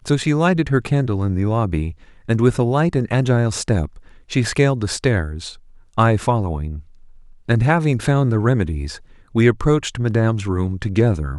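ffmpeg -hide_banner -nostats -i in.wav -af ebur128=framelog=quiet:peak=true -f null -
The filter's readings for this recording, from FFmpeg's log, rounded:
Integrated loudness:
  I:         -18.9 LUFS
  Threshold: -29.5 LUFS
Loudness range:
  LRA:         2.0 LU
  Threshold: -39.7 LUFS
  LRA low:   -20.8 LUFS
  LRA high:  -18.8 LUFS
True peak:
  Peak:       -1.9 dBFS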